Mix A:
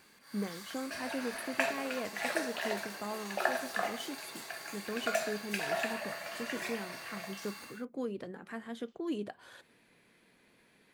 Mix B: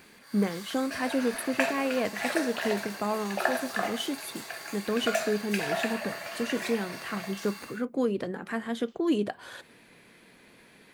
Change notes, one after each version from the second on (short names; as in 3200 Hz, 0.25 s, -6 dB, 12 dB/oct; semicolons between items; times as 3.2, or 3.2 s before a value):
speech +10.0 dB; background +3.5 dB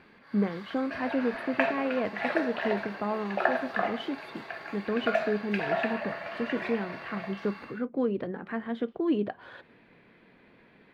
background +3.5 dB; master: add air absorption 380 m